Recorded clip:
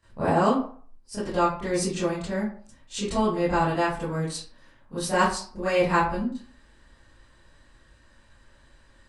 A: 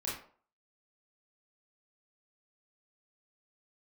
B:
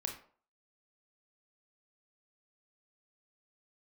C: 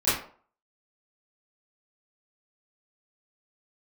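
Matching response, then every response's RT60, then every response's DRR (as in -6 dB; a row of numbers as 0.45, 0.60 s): C; 0.50, 0.50, 0.50 s; -6.5, 2.5, -15.5 dB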